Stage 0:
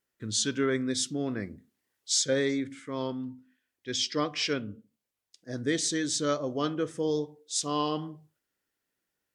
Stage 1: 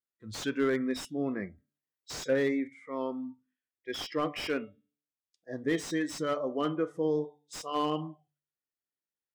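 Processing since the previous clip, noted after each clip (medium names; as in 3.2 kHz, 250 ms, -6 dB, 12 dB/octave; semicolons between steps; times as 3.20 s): de-hum 146 Hz, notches 26; spectral noise reduction 17 dB; slew-rate limiter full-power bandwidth 55 Hz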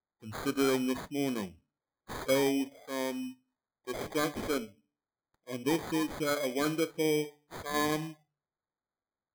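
sample-and-hold 16×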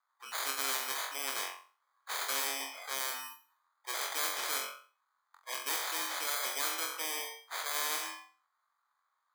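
ladder high-pass 1 kHz, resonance 65%; flutter echo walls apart 3.8 m, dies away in 0.36 s; spectrum-flattening compressor 4:1; trim +5.5 dB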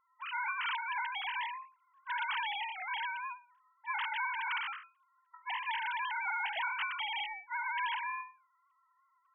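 formants replaced by sine waves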